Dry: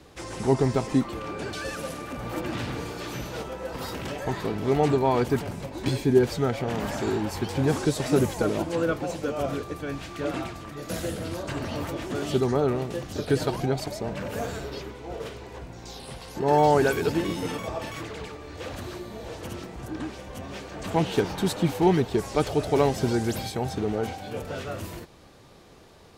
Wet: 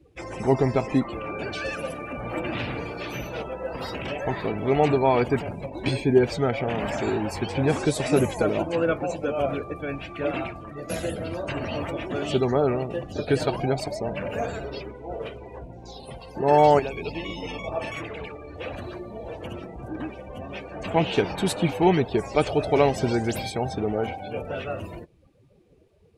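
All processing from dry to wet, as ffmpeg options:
ffmpeg -i in.wav -filter_complex "[0:a]asettb=1/sr,asplit=3[link_01][link_02][link_03];[link_01]atrim=end=16.794[link_04];[link_02]atrim=start=16.79:end=17.72,asetpts=PTS-STARTPTS,afade=type=in:duration=0.004:curve=qsin,afade=type=out:start_time=0.926:duration=0.004:curve=qsin,acrossover=split=240|730|6300[link_05][link_06][link_07][link_08];[link_05]acompressor=threshold=-40dB:ratio=3[link_09];[link_06]acompressor=threshold=-39dB:ratio=3[link_10];[link_07]acompressor=threshold=-34dB:ratio=3[link_11];[link_08]acompressor=threshold=-57dB:ratio=3[link_12];[link_09][link_10][link_11][link_12]amix=inputs=4:normalize=0,aeval=exprs='val(0)+0.00794*(sin(2*PI*50*n/s)+sin(2*PI*2*50*n/s)/2+sin(2*PI*3*50*n/s)/3+sin(2*PI*4*50*n/s)/4+sin(2*PI*5*50*n/s)/5)':channel_layout=same,equalizer=frequency=1500:width_type=o:width=0.38:gain=-14.5[link_13];[link_03]atrim=start=17.716[link_14];[link_04][link_13]acrossfade=duration=0.004:curve1=hsin:curve2=qsin[link_15];[link_15][link_14]acrossfade=duration=0.004:curve1=qsin:curve2=hsin,afftdn=noise_reduction=23:noise_floor=-42,equalizer=frequency=630:width_type=o:width=0.67:gain=5,equalizer=frequency=2500:width_type=o:width=0.67:gain=9,equalizer=frequency=10000:width_type=o:width=0.67:gain=7" out.wav

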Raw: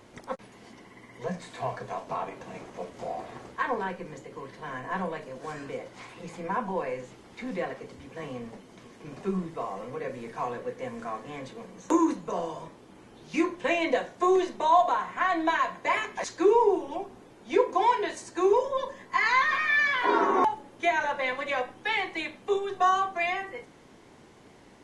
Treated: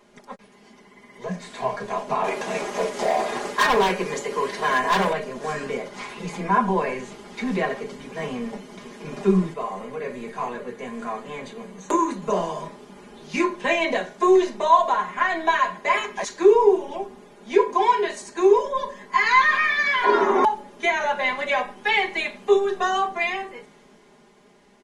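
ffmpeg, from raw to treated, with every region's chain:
ffmpeg -i in.wav -filter_complex "[0:a]asettb=1/sr,asplit=3[link_01][link_02][link_03];[link_01]atrim=end=2.244[link_04];[link_02]atrim=start=2.24:end=5.13,asetpts=PTS-STARTPTS,afade=type=in:duration=0.004:curve=qsin,afade=type=out:start_time=2.886:duration=0.004:curve=qsin,bass=frequency=250:gain=-11,treble=frequency=4000:gain=3,asoftclip=type=hard:threshold=-32.5dB,acontrast=52[link_05];[link_03]atrim=start=5.126[link_06];[link_04][link_05]acrossfade=duration=0.004:curve1=hsin:curve2=qsin[link_07];[link_07][link_06]acrossfade=duration=0.004:curve1=qsin:curve2=hsin,asettb=1/sr,asplit=3[link_08][link_09][link_10];[link_08]atrim=end=9.534[link_11];[link_09]atrim=start=9.53:end=12.22,asetpts=PTS-STARTPTS,afade=type=in:duration=0.004:curve=qsin,afade=type=out:start_time=2.686:duration=0.004:curve=qsin,bandreject=frequency=5400:width=6.6,flanger=delay=4.2:depth=6.5:regen=83:speed=1.1:shape=triangular[link_12];[link_10]atrim=start=12.216[link_13];[link_11][link_12]acrossfade=duration=0.004:curve1=hsin:curve2=qsin[link_14];[link_14][link_13]acrossfade=duration=0.004:curve1=qsin:curve2=hsin,equalizer=frequency=80:width_type=o:width=0.73:gain=-14.5,aecho=1:1:4.9:0.81,dynaudnorm=framelen=300:gausssize=11:maxgain=13.5dB,volume=-4dB" out.wav

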